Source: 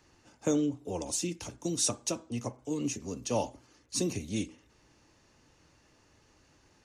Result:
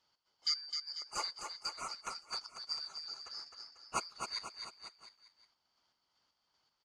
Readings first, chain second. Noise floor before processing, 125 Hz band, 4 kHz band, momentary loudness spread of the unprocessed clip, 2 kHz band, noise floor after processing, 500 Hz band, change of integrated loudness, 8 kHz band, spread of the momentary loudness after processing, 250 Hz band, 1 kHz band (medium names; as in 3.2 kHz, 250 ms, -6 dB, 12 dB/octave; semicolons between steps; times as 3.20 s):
-65 dBFS, -27.0 dB, +3.0 dB, 9 LU, -1.0 dB, -82 dBFS, -20.0 dB, -6.5 dB, -13.0 dB, 14 LU, -29.0 dB, -1.0 dB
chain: four frequency bands reordered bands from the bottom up 4321; FFT filter 150 Hz 0 dB, 930 Hz +10 dB, 11 kHz -6 dB; square tremolo 2.6 Hz, depth 65%, duty 40%; bouncing-ball echo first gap 260 ms, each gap 0.9×, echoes 5; upward expansion 1.5:1, over -47 dBFS; trim -4.5 dB